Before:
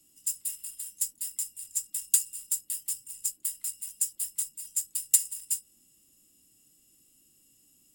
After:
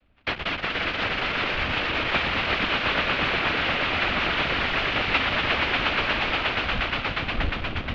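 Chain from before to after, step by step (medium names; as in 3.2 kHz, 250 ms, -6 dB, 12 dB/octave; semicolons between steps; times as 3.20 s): bit-reversed sample order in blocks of 128 samples; wind noise 150 Hz -48 dBFS; on a send: echo with a slow build-up 119 ms, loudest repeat 5, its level -6 dB; on the sum: noise-vocoded speech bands 8; in parallel at -6 dB: fuzz box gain 42 dB, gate -49 dBFS; on the sum: mistuned SSB -250 Hz 190–3400 Hz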